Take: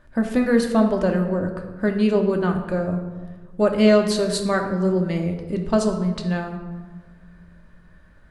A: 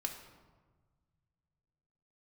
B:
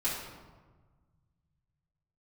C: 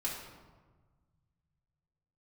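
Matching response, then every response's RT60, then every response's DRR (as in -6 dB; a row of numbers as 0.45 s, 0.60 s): A; 1.4 s, 1.4 s, 1.4 s; 2.5 dB, -10.0 dB, -5.0 dB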